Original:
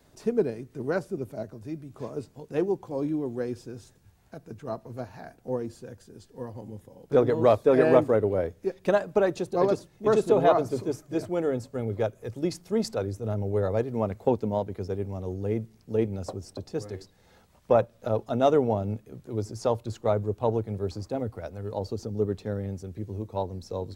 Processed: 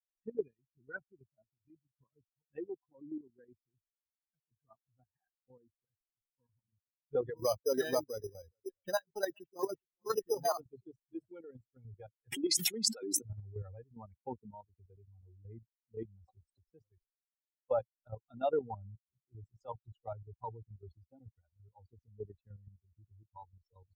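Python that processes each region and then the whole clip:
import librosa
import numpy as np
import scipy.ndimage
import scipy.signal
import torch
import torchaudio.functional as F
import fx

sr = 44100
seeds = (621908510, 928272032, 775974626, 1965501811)

y = fx.chain(x, sr, fx.resample_bad(factor=8, down='none', up='hold'),
    fx.echo_single(ms=416, db=-16.5), at=(7.37, 10.6))
y = fx.chain(y, sr, fx.highpass(hz=210.0, slope=24),
    fx.high_shelf(hz=4000.0, db=4.5),
    fx.env_flatten(amount_pct=100), at=(12.32, 13.22))
y = fx.bin_expand(y, sr, power=3.0)
y = fx.low_shelf(y, sr, hz=290.0, db=-8.5)
y = fx.level_steps(y, sr, step_db=10)
y = y * librosa.db_to_amplitude(1.5)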